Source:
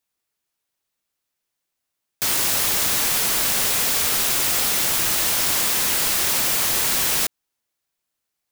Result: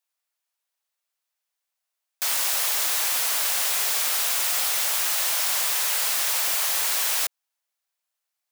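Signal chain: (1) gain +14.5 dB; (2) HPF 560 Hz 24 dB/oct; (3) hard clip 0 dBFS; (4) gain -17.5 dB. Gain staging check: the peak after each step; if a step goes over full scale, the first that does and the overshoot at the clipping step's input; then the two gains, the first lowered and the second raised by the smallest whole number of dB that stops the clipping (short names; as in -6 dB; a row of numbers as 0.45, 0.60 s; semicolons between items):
+7.5, +7.5, 0.0, -17.5 dBFS; step 1, 7.5 dB; step 1 +6.5 dB, step 4 -9.5 dB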